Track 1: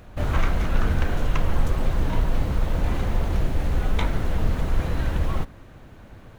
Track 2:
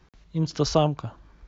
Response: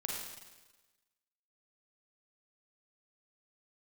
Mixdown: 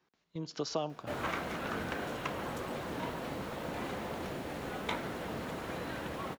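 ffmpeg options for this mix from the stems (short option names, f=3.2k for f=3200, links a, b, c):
-filter_complex "[0:a]adelay=900,volume=-5.5dB[a];[1:a]acompressor=threshold=-28dB:ratio=2.5,volume=-5dB,asplit=2[b][c];[c]volume=-23dB[d];[2:a]atrim=start_sample=2205[e];[d][e]afir=irnorm=-1:irlink=0[f];[a][b][f]amix=inputs=3:normalize=0,highpass=240,bandreject=f=6.2k:w=29,agate=range=-9dB:threshold=-47dB:ratio=16:detection=peak"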